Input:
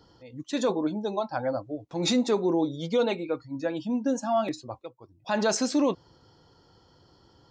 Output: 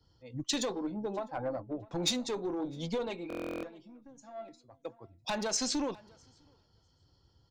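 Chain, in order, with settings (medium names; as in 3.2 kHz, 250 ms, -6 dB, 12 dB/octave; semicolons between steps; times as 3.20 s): single-diode clipper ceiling -22.5 dBFS; 0.78–1.51 s: treble shelf 3.7 kHz -11.5 dB; compression 12:1, threshold -37 dBFS, peak gain reduction 16.5 dB; 3.56–4.85 s: feedback comb 680 Hz, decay 0.34 s, mix 70%; resampled via 22.05 kHz; overload inside the chain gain 33 dB; feedback delay 654 ms, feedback 29%, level -18 dB; buffer glitch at 3.28 s, samples 1024, times 14; three bands expanded up and down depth 100%; trim +4.5 dB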